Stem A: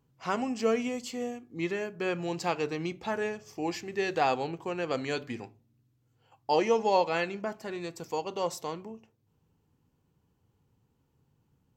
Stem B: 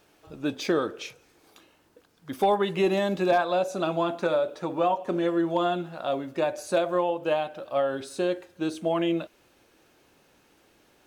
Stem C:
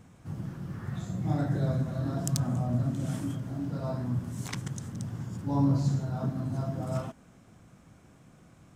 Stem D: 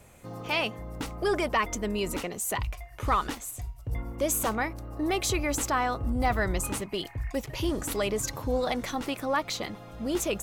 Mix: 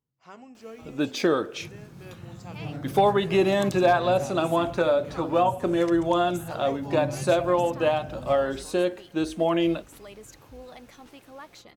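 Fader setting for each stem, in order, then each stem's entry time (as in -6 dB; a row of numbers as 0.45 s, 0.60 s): -16.0 dB, +2.5 dB, -7.5 dB, -16.5 dB; 0.00 s, 0.55 s, 1.35 s, 2.05 s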